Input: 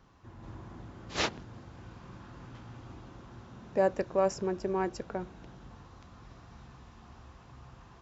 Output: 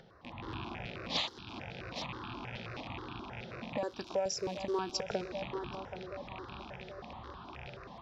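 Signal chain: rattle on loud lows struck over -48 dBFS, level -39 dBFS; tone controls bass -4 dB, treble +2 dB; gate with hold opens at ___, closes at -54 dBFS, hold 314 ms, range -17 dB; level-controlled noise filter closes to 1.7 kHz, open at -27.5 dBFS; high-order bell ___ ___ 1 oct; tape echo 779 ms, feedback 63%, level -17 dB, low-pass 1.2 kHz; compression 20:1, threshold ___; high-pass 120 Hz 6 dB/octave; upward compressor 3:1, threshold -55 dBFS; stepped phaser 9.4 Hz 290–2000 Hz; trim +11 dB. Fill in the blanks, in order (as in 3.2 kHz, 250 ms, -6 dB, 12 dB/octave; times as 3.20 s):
-50 dBFS, 4.3 kHz, +10.5 dB, -38 dBFS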